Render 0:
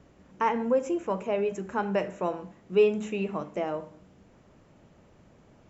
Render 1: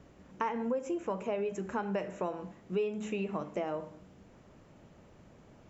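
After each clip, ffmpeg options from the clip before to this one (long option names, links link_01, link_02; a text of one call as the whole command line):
ffmpeg -i in.wav -af "acompressor=threshold=-31dB:ratio=4" out.wav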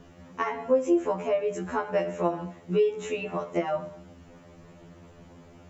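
ffmpeg -i in.wav -af "afftfilt=real='re*2*eq(mod(b,4),0)':imag='im*2*eq(mod(b,4),0)':win_size=2048:overlap=0.75,volume=9dB" out.wav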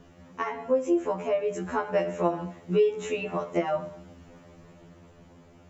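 ffmpeg -i in.wav -af "dynaudnorm=framelen=250:gausssize=11:maxgain=3dB,volume=-2dB" out.wav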